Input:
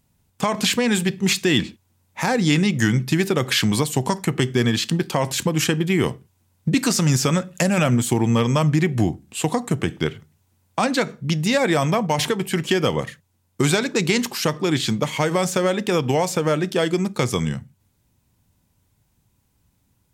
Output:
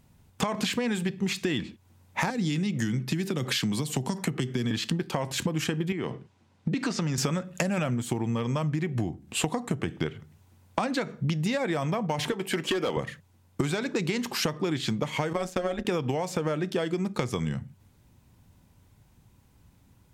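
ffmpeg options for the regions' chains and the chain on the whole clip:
-filter_complex "[0:a]asettb=1/sr,asplit=3[a][b][c];[a]atrim=end=2.304[d];[b]atrim=start=2.3:end=4.71,asetpts=PTS-STARTPTS,afade=t=in:d=0.004:c=qsin,afade=t=out:st=2.406:d=0.004:c=qsin,highpass=130,acrossover=split=280|3000[e][f][g];[f]acompressor=threshold=-32dB:ratio=4:attack=3.2:release=140:knee=2.83:detection=peak[h];[e][h][g]amix=inputs=3:normalize=0[i];[c]atrim=start=4.706[j];[d][i]acrossfade=d=0.004:c1=hsin:c2=qsin[k];[k][j]acrossfade=d=0.004:c1=qsin:c2=hsin,asettb=1/sr,asplit=3[l][m][n];[l]atrim=end=5.924[o];[m]atrim=start=5.92:end=7.18,asetpts=PTS-STARTPTS,afade=t=in:d=0.004:c=qsin,afade=t=out:st=1.256:d=0.004:c=qsin,acompressor=threshold=-25dB:ratio=2.5:attack=3.2:release=140:knee=1:detection=peak,highpass=140,lowpass=5.4k[p];[n]atrim=start=7.176[q];[o][p]acrossfade=d=0.004:c1=hsin:c2=qsin[r];[r][q]acrossfade=d=0.004:c1=qsin:c2=hsin,asettb=1/sr,asplit=3[s][t][u];[s]atrim=end=12.324[v];[t]atrim=start=12.32:end=12.97,asetpts=PTS-STARTPTS,afade=t=in:d=0.004:c=qsin,afade=t=out:st=0.646:d=0.004:c=qsin,highpass=260,asoftclip=type=hard:threshold=-17.5dB[w];[u]atrim=start=12.966[x];[v][w]acrossfade=d=0.004:c1=hsin:c2=qsin[y];[y][x]acrossfade=d=0.004:c1=qsin:c2=hsin,asettb=1/sr,asplit=3[z][aa][ab];[z]atrim=end=15.334[ac];[aa]atrim=start=15.33:end=15.85,asetpts=PTS-STARTPTS,afade=t=in:d=0.004:c=qsin,afade=t=out:st=0.516:d=0.004:c=qsin,agate=range=-33dB:threshold=-22dB:ratio=3:release=100:detection=peak,aecho=1:1:3.7:0.63,atrim=end_sample=22932,tremolo=f=170:d=0.75[ad];[ab]atrim=start=15.846[ae];[ac][ad]acrossfade=d=0.004:c1=hsin:c2=qsin[af];[af][ae]acrossfade=d=0.004:c1=qsin:c2=hsin,highshelf=f=4.4k:g=-8,acompressor=threshold=-31dB:ratio=16,volume=6.5dB"

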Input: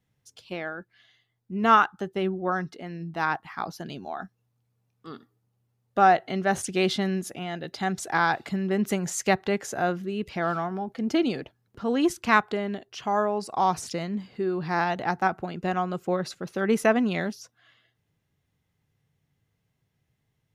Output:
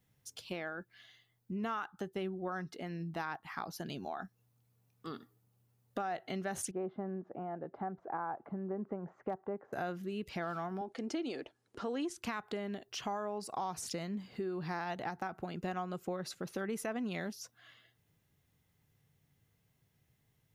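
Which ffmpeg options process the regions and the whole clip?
-filter_complex "[0:a]asettb=1/sr,asplit=3[a][b][c];[a]atrim=end=6.714[d];[b]atrim=start=6.71:end=9.73,asetpts=PTS-STARTPTS,afade=t=in:d=0.004:c=qsin,afade=t=out:st=3.016:d=0.004:c=qsin,lowpass=f=1.1k:w=0.5412,lowpass=f=1.1k:w=1.3066,aemphasis=mode=production:type=bsi,asoftclip=type=hard:threshold=-14dB[e];[c]atrim=start=9.726[f];[d][e]acrossfade=d=0.004:c1=hsin:c2=qsin[g];[g][f]acrossfade=d=0.004:c1=qsin:c2=hsin,asettb=1/sr,asplit=3[h][i][j];[h]atrim=end=10.814[k];[i]atrim=start=10.81:end=12.17,asetpts=PTS-STARTPTS,afade=t=in:d=0.004:c=qsin,afade=t=out:st=1.356:d=0.004:c=qsin,lowpass=f=9.6k:w=0.5412,lowpass=f=9.6k:w=1.3066,lowshelf=f=230:t=q:w=1.5:g=-9[l];[j]atrim=start=12.166[m];[k][l]acrossfade=d=0.004:c1=hsin:c2=qsin[n];[n][m]acrossfade=d=0.004:c1=qsin:c2=hsin,highshelf=f=9.9k:g=10.5,alimiter=limit=-16dB:level=0:latency=1:release=84,acompressor=threshold=-39dB:ratio=3"

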